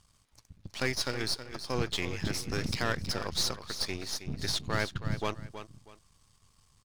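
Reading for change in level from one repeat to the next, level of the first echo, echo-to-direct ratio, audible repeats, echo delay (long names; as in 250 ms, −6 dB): −11.0 dB, −11.0 dB, −10.5 dB, 2, 320 ms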